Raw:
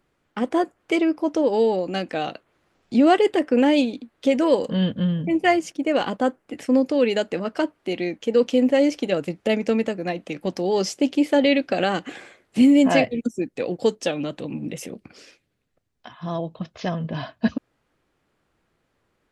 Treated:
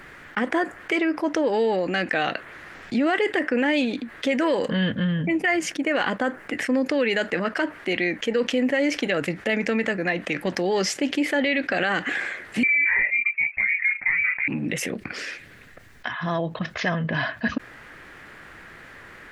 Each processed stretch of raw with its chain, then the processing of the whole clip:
12.63–14.48 inverted band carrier 2600 Hz + detuned doubles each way 13 cents
whole clip: bell 1800 Hz +15 dB 0.94 oct; limiter -10 dBFS; fast leveller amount 50%; gain -5 dB

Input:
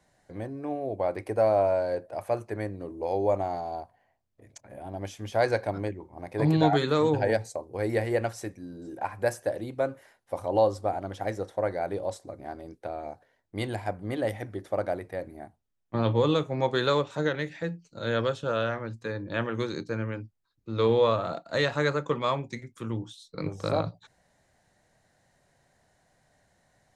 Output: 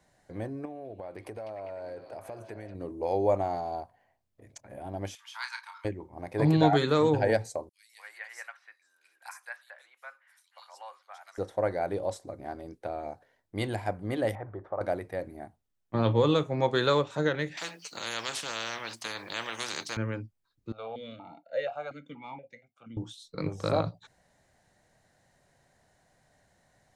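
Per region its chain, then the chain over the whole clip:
0.65–2.75 compressor, threshold -38 dBFS + delay with a stepping band-pass 0.199 s, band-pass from 3700 Hz, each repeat -0.7 oct, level -2 dB
5.15–5.85 rippled Chebyshev high-pass 890 Hz, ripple 6 dB + doubler 33 ms -7 dB
7.69–11.38 HPF 1300 Hz 24 dB/oct + high shelf 2300 Hz -8.5 dB + bands offset in time highs, lows 0.24 s, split 3200 Hz
14.35–14.81 bell 240 Hz -11 dB 0.71 oct + compressor 2:1, threshold -36 dBFS + synth low-pass 1100 Hz, resonance Q 2.2
17.57–19.97 HPF 790 Hz + bell 7100 Hz -6.5 dB 0.46 oct + spectral compressor 4:1
20.72–22.97 comb 1.4 ms, depth 75% + vowel sequencer 4.2 Hz
whole clip: dry

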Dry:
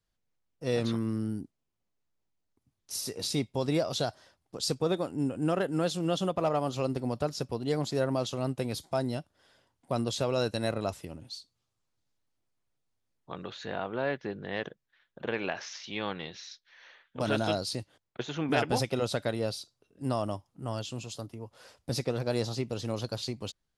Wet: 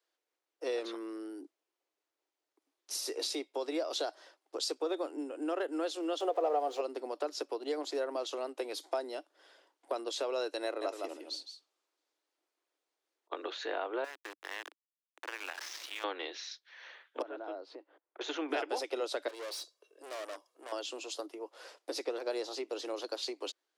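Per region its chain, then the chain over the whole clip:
6.2–6.81 zero-crossing step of -41 dBFS + small resonant body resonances 480/710 Hz, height 13 dB, ringing for 30 ms
10.65–13.32 echo 0.163 s -8.5 dB + auto swell 0.513 s
14.04–16.04 resonant low shelf 720 Hz -11.5 dB, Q 1.5 + compressor 4:1, threshold -39 dBFS + sample gate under -42.5 dBFS
17.22–18.21 LPF 1500 Hz + compressor 2:1, threshold -51 dBFS
19.28–20.72 comb 1.8 ms, depth 63% + tube stage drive 42 dB, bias 0.45 + high shelf 5700 Hz +6.5 dB
whole clip: compressor 4:1, threshold -34 dBFS; steep high-pass 300 Hz 72 dB/oct; high shelf 8400 Hz -9 dB; gain +3.5 dB

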